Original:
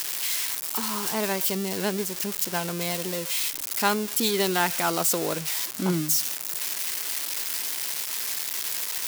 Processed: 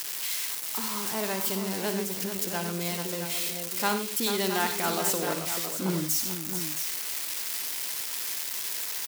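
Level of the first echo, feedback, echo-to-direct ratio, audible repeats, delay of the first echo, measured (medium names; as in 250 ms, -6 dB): -10.0 dB, no regular repeats, -3.5 dB, 4, 58 ms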